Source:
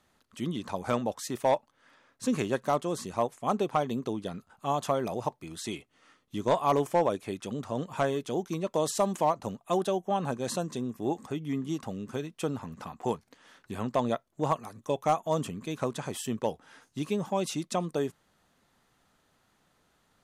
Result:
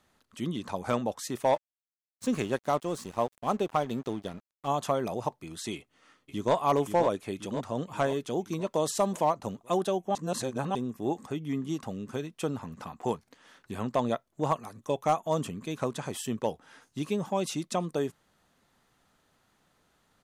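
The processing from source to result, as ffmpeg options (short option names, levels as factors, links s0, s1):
-filter_complex "[0:a]asettb=1/sr,asplit=3[s0][s1][s2];[s0]atrim=end=1.544[s3];[s1]atrim=start=1.54:end=4.68,asetpts=PTS-STARTPTS,afade=t=in:d=0.004:c=qsin,afade=t=out:st=3.136:d=0.004:c=qsin,aeval=exprs='sgn(val(0))*max(abs(val(0))-0.00447,0)':c=same[s4];[s2]atrim=start=4.676[s5];[s3][s4]acrossfade=d=0.004:c1=hsin:c2=qsin[s6];[s6][s5]acrossfade=d=0.004:c1=qsin:c2=hsin,asplit=2[s7][s8];[s8]afade=t=in:st=5.75:d=0.01,afade=t=out:st=6.54:d=0.01,aecho=0:1:530|1060|1590|2120|2650|3180|3710|4240:0.421697|0.253018|0.151811|0.0910864|0.0546519|0.0327911|0.0196747|0.0118048[s9];[s7][s9]amix=inputs=2:normalize=0,asplit=3[s10][s11][s12];[s10]atrim=end=10.152[s13];[s11]atrim=start=10.148:end=10.752,asetpts=PTS-STARTPTS,areverse[s14];[s12]atrim=start=10.748[s15];[s13][s14]acrossfade=d=0.004:c1=hsin:c2=hsin[s16];[s16][s15]acrossfade=d=0.004:c1=hsin:c2=hsin"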